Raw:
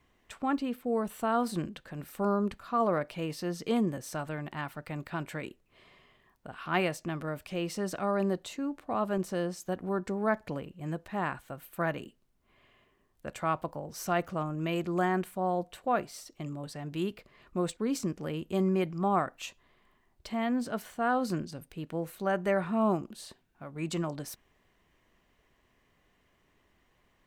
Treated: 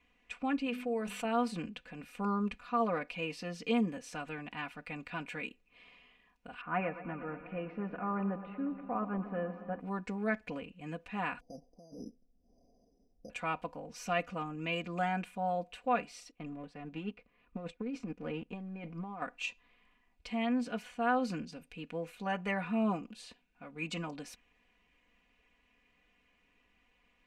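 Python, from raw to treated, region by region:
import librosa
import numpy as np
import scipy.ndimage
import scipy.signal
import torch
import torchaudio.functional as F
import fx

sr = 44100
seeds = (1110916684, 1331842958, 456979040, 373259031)

y = fx.chain(x, sr, fx.low_shelf(hz=320.0, db=-7.0),
    fx.hum_notches(base_hz=50, count=8),
    fx.env_flatten(amount_pct=50), at=(0.66, 1.25))
y = fx.chain(y, sr, fx.lowpass(hz=1700.0, slope=24),
    fx.echo_warbled(ms=118, feedback_pct=80, rate_hz=2.8, cents=54, wet_db=-14.5), at=(6.61, 9.8))
y = fx.chain(y, sr, fx.ellip_lowpass(hz=690.0, order=4, stop_db=50),
    fx.over_compress(threshold_db=-44.0, ratio=-1.0),
    fx.resample_bad(factor=8, down='filtered', up='hold'), at=(11.4, 13.3))
y = fx.chain(y, sr, fx.law_mismatch(coded='A'),
    fx.over_compress(threshold_db=-34.0, ratio=-1.0),
    fx.lowpass(hz=1100.0, slope=6), at=(16.31, 19.22))
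y = scipy.signal.sosfilt(scipy.signal.butter(2, 7500.0, 'lowpass', fs=sr, output='sos'), y)
y = fx.peak_eq(y, sr, hz=2500.0, db=12.5, octaves=0.45)
y = y + 0.87 * np.pad(y, (int(4.1 * sr / 1000.0), 0))[:len(y)]
y = y * librosa.db_to_amplitude(-7.0)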